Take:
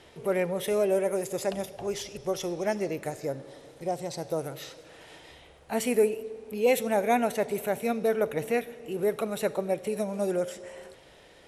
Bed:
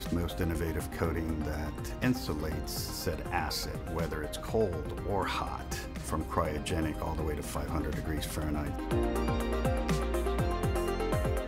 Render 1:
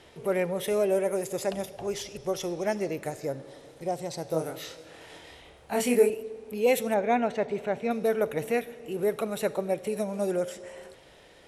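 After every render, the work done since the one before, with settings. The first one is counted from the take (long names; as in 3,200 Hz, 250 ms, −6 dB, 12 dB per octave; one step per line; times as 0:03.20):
0:04.30–0:06.10: double-tracking delay 25 ms −3 dB
0:06.94–0:07.91: high-frequency loss of the air 140 metres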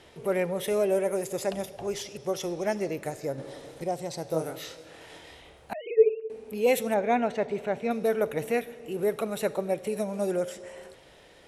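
0:01.99–0:02.45: high-pass filter 87 Hz
0:03.38–0:03.84: clip gain +5 dB
0:05.73–0:06.30: three sine waves on the formant tracks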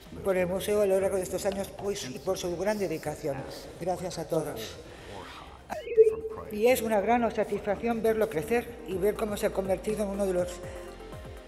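mix in bed −12.5 dB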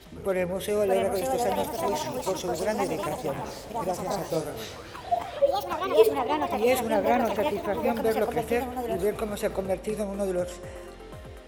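delay with pitch and tempo change per echo 675 ms, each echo +4 semitones, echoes 2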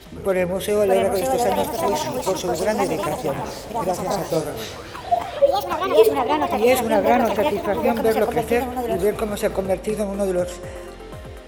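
level +6.5 dB
brickwall limiter −2 dBFS, peak gain reduction 2.5 dB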